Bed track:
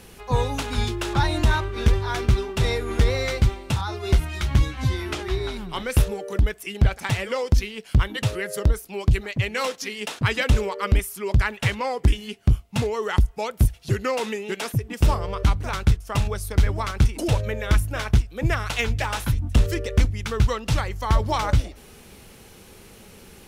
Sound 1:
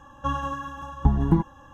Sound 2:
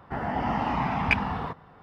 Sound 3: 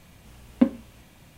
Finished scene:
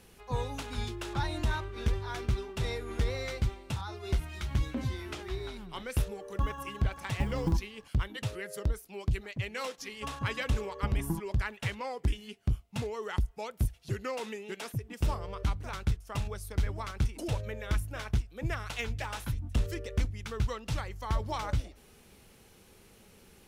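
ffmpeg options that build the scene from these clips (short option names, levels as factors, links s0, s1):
-filter_complex "[1:a]asplit=2[s0][s1];[0:a]volume=0.282[s2];[3:a]alimiter=limit=0.158:level=0:latency=1:release=10[s3];[s0]acrusher=bits=8:mode=log:mix=0:aa=0.000001[s4];[s3]atrim=end=1.37,asetpts=PTS-STARTPTS,volume=0.335,afade=t=in:d=0.004:c=hsin,afade=t=out:st=1.366:d=0.004:c=hsin,adelay=182133S[s5];[s4]atrim=end=1.73,asetpts=PTS-STARTPTS,volume=0.266,afade=t=in:d=0.004:c=hsin,afade=t=out:st=1.726:d=0.004:c=hsin,adelay=6150[s6];[s1]atrim=end=1.73,asetpts=PTS-STARTPTS,volume=0.211,afade=t=in:d=0.004:c=hsin,afade=t=out:st=1.726:d=0.004:c=hsin,adelay=431298S[s7];[s2][s5][s6][s7]amix=inputs=4:normalize=0"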